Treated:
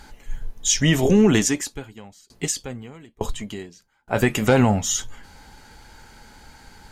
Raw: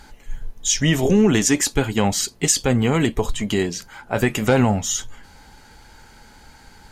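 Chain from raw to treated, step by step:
0:01.39–0:04.08: tremolo with a ramp in dB decaying 1.1 Hz, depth 33 dB

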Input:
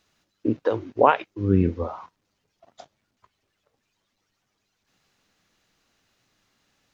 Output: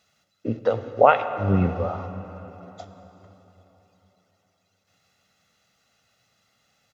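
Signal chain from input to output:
high-pass filter 88 Hz
comb filter 1.5 ms, depth 66%
dense smooth reverb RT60 3.9 s, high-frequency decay 0.85×, DRR 9 dB

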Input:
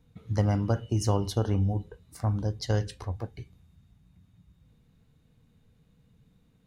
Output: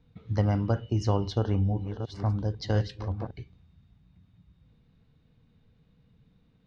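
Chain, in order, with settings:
0:01.19–0:03.31: delay that plays each chunk backwards 521 ms, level −8 dB
low-pass filter 5,000 Hz 24 dB per octave

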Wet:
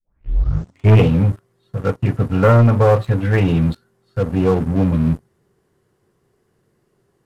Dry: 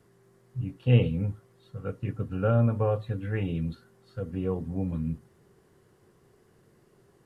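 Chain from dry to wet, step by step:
turntable start at the beginning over 1.05 s
leveller curve on the samples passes 3
dynamic equaliser 1,100 Hz, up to +4 dB, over −33 dBFS, Q 1
level +3.5 dB

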